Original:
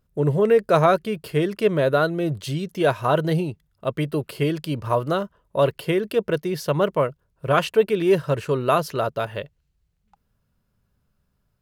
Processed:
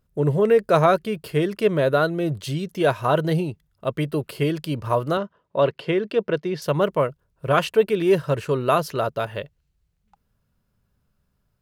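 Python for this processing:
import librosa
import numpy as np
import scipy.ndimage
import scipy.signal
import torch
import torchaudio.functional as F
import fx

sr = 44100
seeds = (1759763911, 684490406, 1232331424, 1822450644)

y = fx.bandpass_edges(x, sr, low_hz=140.0, high_hz=4500.0, at=(5.17, 6.62))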